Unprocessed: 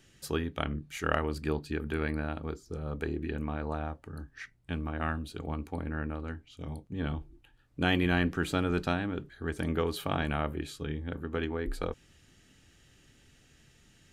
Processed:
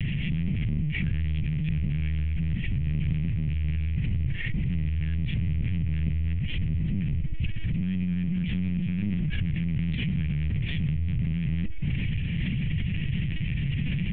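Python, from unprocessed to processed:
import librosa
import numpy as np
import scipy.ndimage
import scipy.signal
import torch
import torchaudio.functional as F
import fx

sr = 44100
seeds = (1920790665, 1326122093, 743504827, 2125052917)

y = fx.delta_mod(x, sr, bps=16000, step_db=-24.5)
y = scipy.signal.sosfilt(scipy.signal.ellip(3, 1.0, 40, [200.0, 2200.0], 'bandstop', fs=sr, output='sos'), y)
y = fx.level_steps(y, sr, step_db=20)
y = fx.tilt_shelf(y, sr, db=9.0, hz=1400.0)
y = y + 10.0 ** (-21.5 / 20.0) * np.pad(y, (int(361 * sr / 1000.0), 0))[:len(y)]
y = fx.cheby_harmonics(y, sr, harmonics=(4,), levels_db=(-21,), full_scale_db=-23.5)
y = fx.dynamic_eq(y, sr, hz=850.0, q=0.75, threshold_db=-57.0, ratio=4.0, max_db=-3)
y = fx.lpc_vocoder(y, sr, seeds[0], excitation='pitch_kept', order=10)
y = fx.pre_swell(y, sr, db_per_s=30.0)
y = F.gain(torch.from_numpy(y), 5.0).numpy()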